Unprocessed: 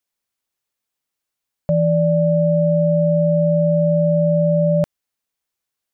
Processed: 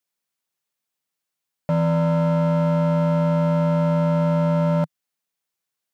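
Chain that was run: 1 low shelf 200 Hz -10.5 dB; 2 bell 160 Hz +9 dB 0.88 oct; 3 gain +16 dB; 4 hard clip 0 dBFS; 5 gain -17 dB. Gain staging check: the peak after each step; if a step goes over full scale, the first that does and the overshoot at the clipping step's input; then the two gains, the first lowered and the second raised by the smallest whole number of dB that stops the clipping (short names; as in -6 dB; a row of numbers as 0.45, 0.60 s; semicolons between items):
-13.0, -8.5, +7.5, 0.0, -17.0 dBFS; step 3, 7.5 dB; step 3 +8 dB, step 5 -9 dB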